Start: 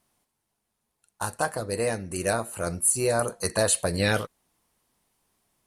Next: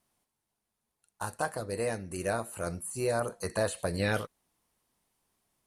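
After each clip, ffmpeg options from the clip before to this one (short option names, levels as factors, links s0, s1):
-filter_complex "[0:a]acrossover=split=2500[s0][s1];[s1]acompressor=threshold=0.0251:ratio=4:attack=1:release=60[s2];[s0][s2]amix=inputs=2:normalize=0,volume=0.562"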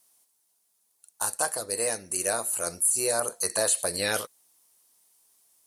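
-af "bass=f=250:g=-13,treble=f=4000:g=15,volume=1.26"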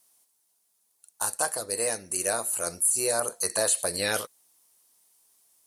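-af anull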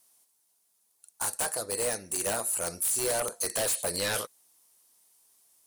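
-af "aeval=exprs='0.075*(abs(mod(val(0)/0.075+3,4)-2)-1)':c=same"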